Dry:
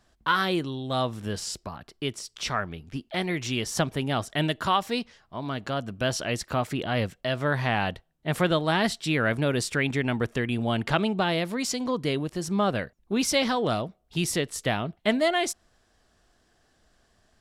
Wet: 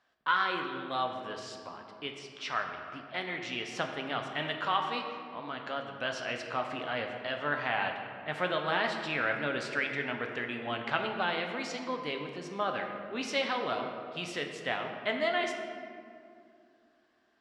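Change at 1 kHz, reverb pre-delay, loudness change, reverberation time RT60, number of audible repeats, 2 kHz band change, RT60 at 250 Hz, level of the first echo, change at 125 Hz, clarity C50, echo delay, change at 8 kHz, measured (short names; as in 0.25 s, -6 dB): -3.5 dB, 4 ms, -6.0 dB, 2.4 s, none, -2.5 dB, 3.2 s, none, -17.0 dB, 5.0 dB, none, -16.5 dB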